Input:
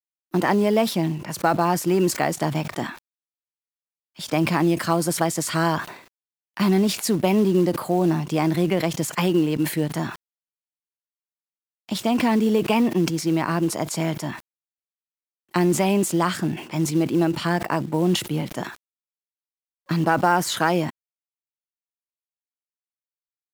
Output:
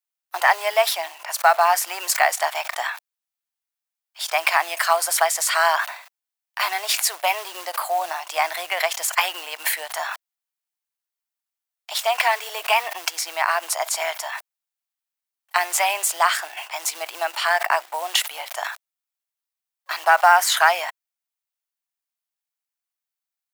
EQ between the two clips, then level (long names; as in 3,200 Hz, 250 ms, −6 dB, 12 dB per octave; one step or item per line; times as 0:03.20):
elliptic high-pass filter 680 Hz, stop band 70 dB
high-shelf EQ 11,000 Hz +5.5 dB
dynamic equaliser 2,000 Hz, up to +4 dB, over −37 dBFS, Q 1.5
+5.5 dB